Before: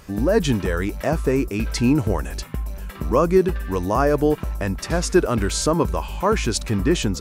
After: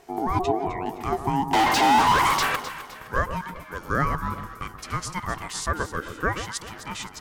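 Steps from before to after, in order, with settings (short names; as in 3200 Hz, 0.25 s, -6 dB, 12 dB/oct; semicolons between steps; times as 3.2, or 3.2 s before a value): 0.41–0.86 formant sharpening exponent 1.5; high-pass sweep 140 Hz -> 710 Hz, 0.95–2.72; ring modulator 550 Hz; 1.53–2.56 overdrive pedal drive 40 dB, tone 3100 Hz, clips at -7 dBFS; on a send: echo with dull and thin repeats by turns 0.129 s, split 1200 Hz, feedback 61%, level -8 dB; on the sum: gain -5 dB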